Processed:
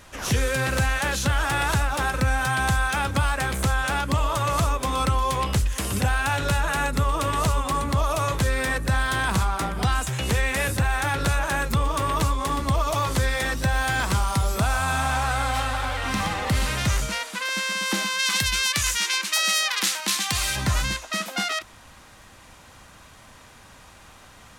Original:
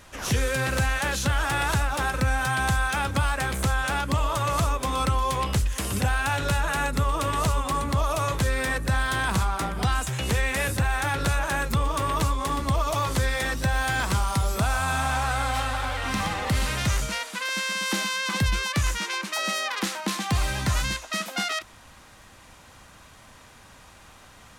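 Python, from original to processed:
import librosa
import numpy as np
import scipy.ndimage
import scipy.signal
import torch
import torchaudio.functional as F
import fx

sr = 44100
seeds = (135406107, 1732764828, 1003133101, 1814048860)

y = fx.tilt_shelf(x, sr, db=-8.5, hz=1400.0, at=(18.18, 20.55), fade=0.02)
y = y * 10.0 ** (1.5 / 20.0)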